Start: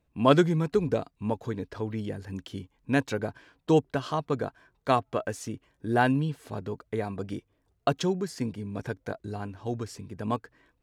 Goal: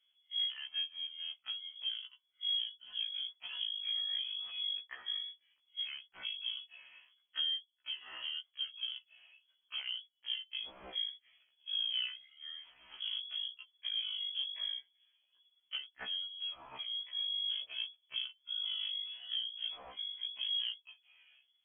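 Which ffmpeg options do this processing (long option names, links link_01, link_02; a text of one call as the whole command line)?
ffmpeg -i in.wav -af "acompressor=threshold=-33dB:ratio=16,aresample=16000,volume=29dB,asoftclip=hard,volume=-29dB,aresample=44100,asetrate=22050,aresample=44100,lowpass=frequency=2900:width_type=q:width=0.5098,lowpass=frequency=2900:width_type=q:width=0.6013,lowpass=frequency=2900:width_type=q:width=0.9,lowpass=frequency=2900:width_type=q:width=2.563,afreqshift=-3400,afftfilt=real='re*1.73*eq(mod(b,3),0)':imag='im*1.73*eq(mod(b,3),0)':win_size=2048:overlap=0.75" out.wav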